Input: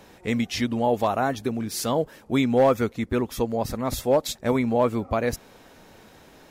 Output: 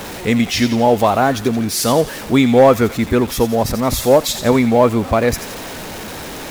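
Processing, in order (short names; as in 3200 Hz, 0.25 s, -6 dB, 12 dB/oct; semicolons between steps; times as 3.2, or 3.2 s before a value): zero-crossing step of -34 dBFS; thin delay 86 ms, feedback 53%, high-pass 2100 Hz, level -8.5 dB; gain +8.5 dB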